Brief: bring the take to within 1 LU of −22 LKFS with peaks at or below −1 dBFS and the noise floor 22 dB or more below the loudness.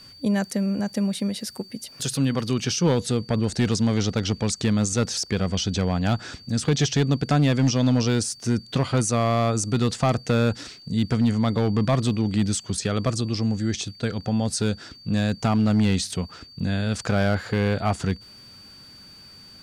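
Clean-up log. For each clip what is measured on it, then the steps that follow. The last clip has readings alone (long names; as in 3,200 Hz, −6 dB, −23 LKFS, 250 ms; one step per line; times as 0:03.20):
share of clipped samples 0.9%; peaks flattened at −13.0 dBFS; interfering tone 4,600 Hz; level of the tone −45 dBFS; integrated loudness −24.0 LKFS; sample peak −13.0 dBFS; target loudness −22.0 LKFS
→ clipped peaks rebuilt −13 dBFS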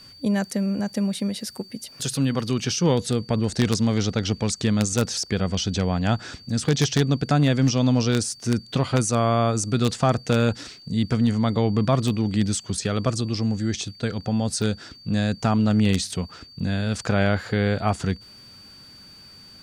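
share of clipped samples 0.0%; interfering tone 4,600 Hz; level of the tone −45 dBFS
→ notch filter 4,600 Hz, Q 30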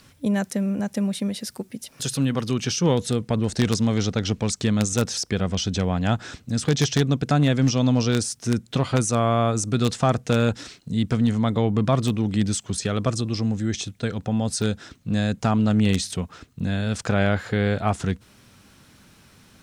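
interfering tone none found; integrated loudness −23.5 LKFS; sample peak −4.0 dBFS; target loudness −22.0 LKFS
→ level +1.5 dB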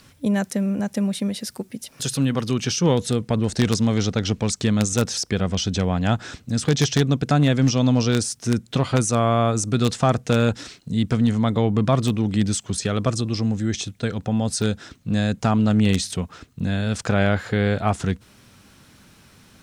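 integrated loudness −22.0 LKFS; sample peak −2.5 dBFS; background noise floor −53 dBFS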